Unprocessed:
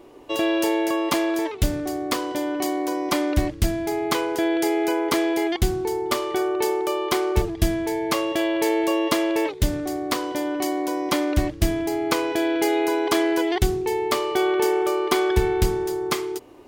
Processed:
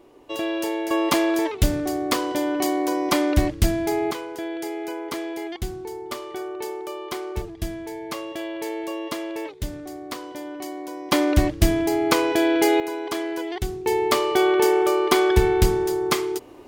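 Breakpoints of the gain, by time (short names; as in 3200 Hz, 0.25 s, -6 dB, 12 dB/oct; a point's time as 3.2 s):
-4.5 dB
from 0.91 s +2 dB
from 4.11 s -8.5 dB
from 11.12 s +3 dB
from 12.8 s -7 dB
from 13.86 s +2.5 dB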